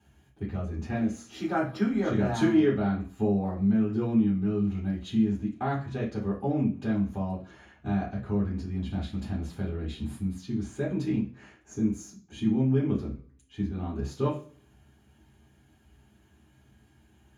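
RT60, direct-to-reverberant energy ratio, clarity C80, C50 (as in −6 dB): non-exponential decay, −7.0 dB, 15.0 dB, 9.0 dB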